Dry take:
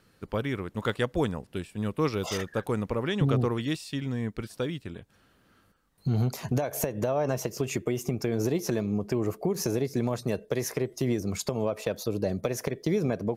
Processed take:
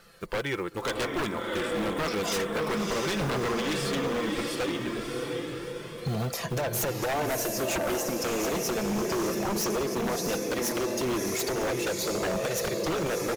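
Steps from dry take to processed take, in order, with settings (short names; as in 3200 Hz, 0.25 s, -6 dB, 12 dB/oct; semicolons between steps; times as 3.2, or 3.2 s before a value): block floating point 7-bit; bell 92 Hz -12.5 dB 2.4 oct; comb 5.9 ms, depth 37%; in parallel at +2 dB: compressor, threshold -42 dBFS, peak gain reduction 18 dB; on the sum: diffused feedback echo 0.666 s, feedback 52%, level -4 dB; flange 0.16 Hz, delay 1.5 ms, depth 3.7 ms, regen -38%; wavefolder -29 dBFS; gain +6 dB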